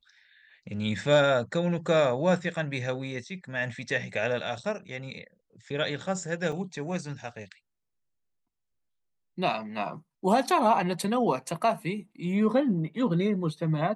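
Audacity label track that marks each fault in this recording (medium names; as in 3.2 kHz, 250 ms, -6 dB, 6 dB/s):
6.520000	6.520000	dropout 3.4 ms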